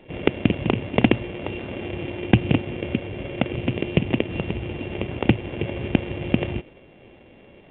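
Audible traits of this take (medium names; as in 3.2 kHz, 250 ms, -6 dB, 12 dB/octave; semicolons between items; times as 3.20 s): a buzz of ramps at a fixed pitch in blocks of 16 samples; A-law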